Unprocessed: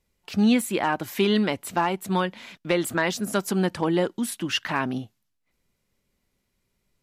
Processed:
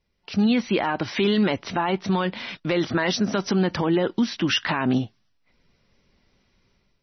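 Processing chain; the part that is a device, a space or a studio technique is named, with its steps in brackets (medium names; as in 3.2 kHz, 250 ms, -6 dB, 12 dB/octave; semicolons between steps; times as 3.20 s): low-bitrate web radio (level rider gain up to 11 dB; peak limiter -13 dBFS, peak gain reduction 10.5 dB; MP3 24 kbps 24 kHz)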